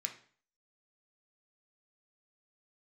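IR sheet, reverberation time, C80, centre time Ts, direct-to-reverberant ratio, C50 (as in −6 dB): 0.45 s, 15.5 dB, 12 ms, 3.0 dB, 11.0 dB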